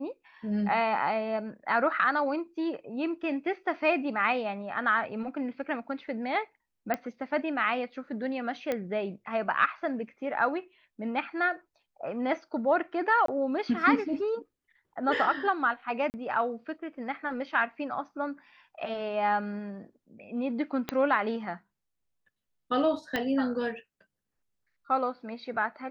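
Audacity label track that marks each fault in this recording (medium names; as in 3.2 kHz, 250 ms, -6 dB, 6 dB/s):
6.940000	6.940000	pop -16 dBFS
8.720000	8.720000	pop -17 dBFS
13.260000	13.280000	dropout 23 ms
16.100000	16.140000	dropout 39 ms
20.890000	20.890000	pop -15 dBFS
23.160000	23.160000	pop -15 dBFS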